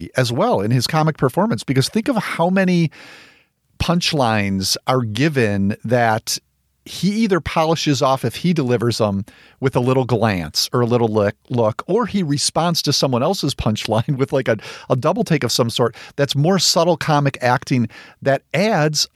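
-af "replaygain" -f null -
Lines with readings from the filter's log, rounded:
track_gain = -0.6 dB
track_peak = 0.591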